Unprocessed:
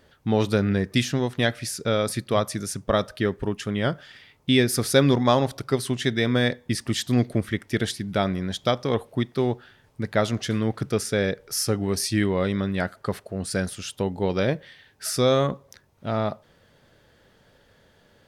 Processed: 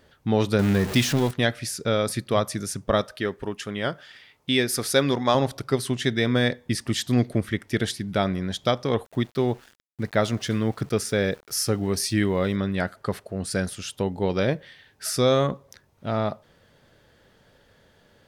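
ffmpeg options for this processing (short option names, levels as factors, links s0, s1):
-filter_complex "[0:a]asettb=1/sr,asplit=3[s0][s1][s2];[s0]atrim=end=0.594[s3];[s1]atrim=start=0.59:end=1.31,asetpts=PTS-STARTPTS,afade=t=in:d=0.004:c=qsin,afade=t=out:st=0.716:d=0.004:c=qsin,aeval=exprs='val(0)+0.5*0.0501*sgn(val(0))':c=same[s4];[s2]atrim=start=1.306[s5];[s3][s4]acrossfade=d=0.004:c1=hsin:c2=qsin[s6];[s6][s5]acrossfade=d=0.004:c1=qsin:c2=hsin,asettb=1/sr,asplit=3[s7][s8][s9];[s7]atrim=end=3.014[s10];[s8]atrim=start=3.01:end=5.35,asetpts=PTS-STARTPTS,afade=t=in:d=0.004:c=qsin,afade=t=out:st=2.336:d=0.004:c=qsin,lowshelf=f=270:g=-9[s11];[s9]atrim=start=5.346[s12];[s10][s11]acrossfade=d=0.004:c1=hsin:c2=qsin[s13];[s13][s12]acrossfade=d=0.004:c1=qsin:c2=hsin,asettb=1/sr,asplit=3[s14][s15][s16];[s14]atrim=end=9.054[s17];[s15]atrim=start=9.05:end=12.56,asetpts=PTS-STARTPTS,afade=t=in:d=0.004:c=qsin,afade=t=out:st=3.506:d=0.004:c=qsin,aeval=exprs='val(0)*gte(abs(val(0)),0.00473)':c=same[s18];[s16]atrim=start=12.556[s19];[s17][s18]acrossfade=d=0.004:c1=hsin:c2=qsin[s20];[s20][s19]acrossfade=d=0.004:c1=qsin:c2=hsin"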